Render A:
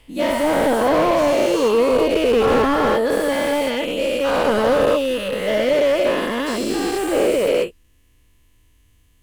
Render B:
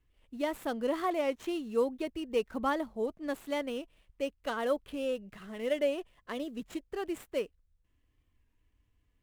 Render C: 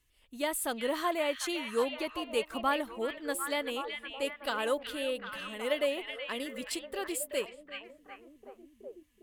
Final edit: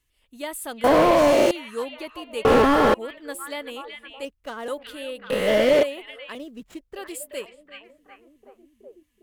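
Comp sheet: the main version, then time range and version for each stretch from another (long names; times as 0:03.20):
C
0:00.84–0:01.51: punch in from A
0:02.45–0:02.94: punch in from A
0:04.25–0:04.68: punch in from B
0:05.30–0:05.83: punch in from A
0:06.35–0:06.96: punch in from B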